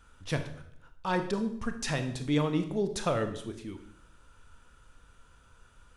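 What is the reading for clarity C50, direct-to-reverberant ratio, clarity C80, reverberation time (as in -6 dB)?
10.0 dB, 7.0 dB, 13.0 dB, 0.65 s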